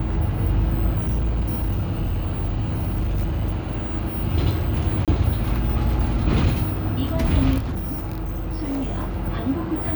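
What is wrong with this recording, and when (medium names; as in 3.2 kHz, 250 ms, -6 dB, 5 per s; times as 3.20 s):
0.98–3.85 s: clipped -18.5 dBFS
5.05–5.08 s: dropout 27 ms
7.58–9.17 s: clipped -22.5 dBFS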